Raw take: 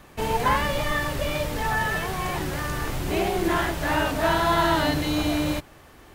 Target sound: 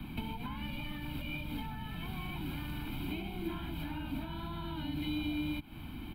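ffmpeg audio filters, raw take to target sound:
ffmpeg -i in.wav -filter_complex "[0:a]acompressor=threshold=-34dB:ratio=6,aecho=1:1:1.3:0.85,acrossover=split=110|320[link_01][link_02][link_03];[link_01]acompressor=threshold=-50dB:ratio=4[link_04];[link_02]acompressor=threshold=-57dB:ratio=4[link_05];[link_03]acompressor=threshold=-40dB:ratio=4[link_06];[link_04][link_05][link_06]amix=inputs=3:normalize=0,firequalizer=gain_entry='entry(110,0);entry(230,9);entry(360,7);entry(530,-21);entry(1100,-5);entry(1700,-18);entry(2400,-2);entry(3700,-6);entry(6000,-30);entry(12000,-8)':delay=0.05:min_phase=1,volume=6dB" out.wav

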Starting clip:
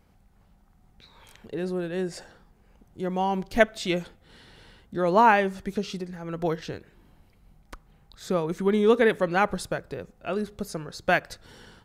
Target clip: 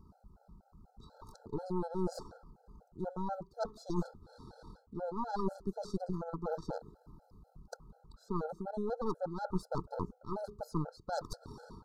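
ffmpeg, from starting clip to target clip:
ffmpeg -i in.wav -af "bass=frequency=250:gain=0,treble=frequency=4000:gain=-13,areverse,acompressor=threshold=-36dB:ratio=20,areverse,aeval=exprs='0.0631*(cos(1*acos(clip(val(0)/0.0631,-1,1)))-cos(1*PI/2))+0.0282*(cos(4*acos(clip(val(0)/0.0631,-1,1)))-cos(4*PI/2))':channel_layout=same,asuperstop=centerf=2400:order=12:qfactor=0.89,afftfilt=real='re*gt(sin(2*PI*4.1*pts/sr)*(1-2*mod(floor(b*sr/1024/440),2)),0)':imag='im*gt(sin(2*PI*4.1*pts/sr)*(1-2*mod(floor(b*sr/1024/440),2)),0)':win_size=1024:overlap=0.75,volume=4dB" out.wav

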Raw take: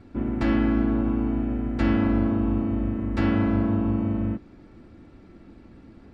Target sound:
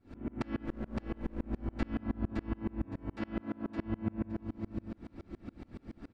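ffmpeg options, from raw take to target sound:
ffmpeg -i in.wav -filter_complex "[0:a]acompressor=threshold=-34dB:ratio=5,asettb=1/sr,asplit=3[link_01][link_02][link_03];[link_01]atrim=end=0.654[link_04];[link_02]atrim=start=0.65:end=1.44,asetpts=PTS-STARTPTS,afade=type=in:duration=0.004:curve=qsin,afade=type=out:start_time=0.786:duration=0.004:curve=qsin,aeval=exprs='clip(val(0),-1,0.00596)':channel_layout=same[link_05];[link_03]atrim=start=1.436[link_06];[link_04][link_05]acrossfade=duration=0.004:curve1=hsin:curve2=qsin[link_07];[link_07][link_06]acrossfade=duration=0.004:curve1=qsin:curve2=hsin,asettb=1/sr,asplit=3[link_08][link_09][link_10];[link_08]atrim=end=2.844[link_11];[link_09]atrim=start=2.84:end=3.79,asetpts=PTS-STARTPTS,afade=type=in:duration=0.004:curve=qsin,afade=type=out:start_time=0.946:duration=0.004:curve=qsin,highpass=190[link_12];[link_10]atrim=start=3.786[link_13];[link_11][link_12]acrossfade=duration=0.004:curve1=hsin:curve2=qsin[link_14];[link_14][link_13]acrossfade=duration=0.004:curve1=qsin:curve2=hsin,aecho=1:1:565|1130|1695:0.631|0.158|0.0394,aeval=exprs='val(0)*pow(10,-32*if(lt(mod(-7.1*n/s,1),2*abs(-7.1)/1000),1-mod(-7.1*n/s,1)/(2*abs(-7.1)/1000),(mod(-7.1*n/s,1)-2*abs(-7.1)/1000)/(1-2*abs(-7.1)/1000))/20)':channel_layout=same,volume=6.5dB" out.wav

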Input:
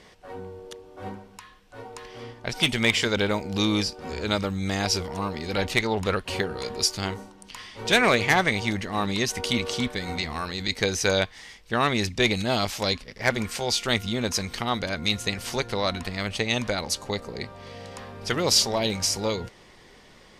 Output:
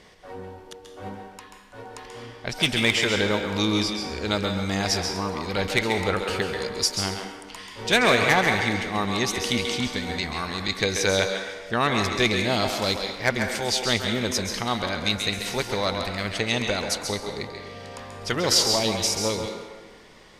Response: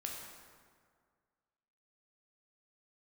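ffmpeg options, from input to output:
-filter_complex "[0:a]asplit=2[link_01][link_02];[link_02]highpass=250[link_03];[1:a]atrim=start_sample=2205,asetrate=61740,aresample=44100,adelay=135[link_04];[link_03][link_04]afir=irnorm=-1:irlink=0,volume=0dB[link_05];[link_01][link_05]amix=inputs=2:normalize=0"

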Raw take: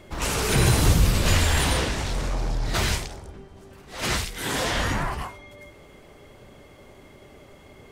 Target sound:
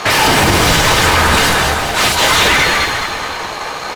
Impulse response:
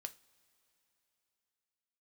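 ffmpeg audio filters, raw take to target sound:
-filter_complex "[0:a]aresample=16000,aeval=exprs='sgn(val(0))*max(abs(val(0))-0.00251,0)':channel_layout=same,aresample=44100,asplit=2[link_01][link_02];[link_02]highpass=frequency=720:poles=1,volume=35dB,asoftclip=type=tanh:threshold=-7.5dB[link_03];[link_01][link_03]amix=inputs=2:normalize=0,lowpass=frequency=1000:poles=1,volume=-6dB,asplit=8[link_04][link_05][link_06][link_07][link_08][link_09][link_10][link_11];[link_05]adelay=418,afreqshift=-38,volume=-5.5dB[link_12];[link_06]adelay=836,afreqshift=-76,volume=-10.5dB[link_13];[link_07]adelay=1254,afreqshift=-114,volume=-15.6dB[link_14];[link_08]adelay=1672,afreqshift=-152,volume=-20.6dB[link_15];[link_09]adelay=2090,afreqshift=-190,volume=-25.6dB[link_16];[link_10]adelay=2508,afreqshift=-228,volume=-30.7dB[link_17];[link_11]adelay=2926,afreqshift=-266,volume=-35.7dB[link_18];[link_04][link_12][link_13][link_14][link_15][link_16][link_17][link_18]amix=inputs=8:normalize=0[link_19];[1:a]atrim=start_sample=2205,asetrate=52920,aresample=44100[link_20];[link_19][link_20]afir=irnorm=-1:irlink=0,asetrate=88200,aresample=44100,alimiter=level_in=15dB:limit=-1dB:release=50:level=0:latency=1,volume=-1dB"

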